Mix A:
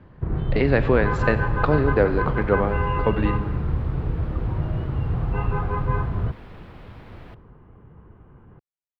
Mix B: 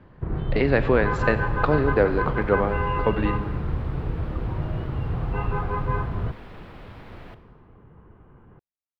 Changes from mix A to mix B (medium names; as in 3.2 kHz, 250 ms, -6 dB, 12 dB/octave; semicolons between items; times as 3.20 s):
second sound: send +11.0 dB; master: add peaking EQ 81 Hz -3.5 dB 2.8 oct